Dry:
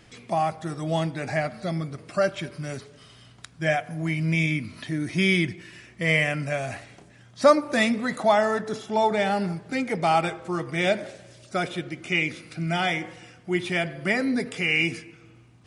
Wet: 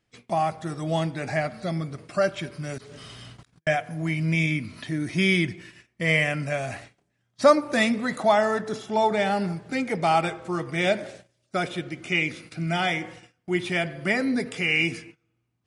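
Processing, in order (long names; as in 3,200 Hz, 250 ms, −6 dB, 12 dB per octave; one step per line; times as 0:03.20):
0:02.78–0:03.67: compressor whose output falls as the input rises −50 dBFS, ratio −1
noise gate −44 dBFS, range −22 dB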